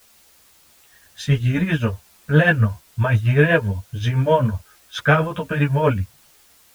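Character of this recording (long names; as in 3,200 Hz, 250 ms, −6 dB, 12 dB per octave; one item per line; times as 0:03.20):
tremolo triangle 7.7 Hz, depth 75%
a quantiser's noise floor 10 bits, dither triangular
a shimmering, thickened sound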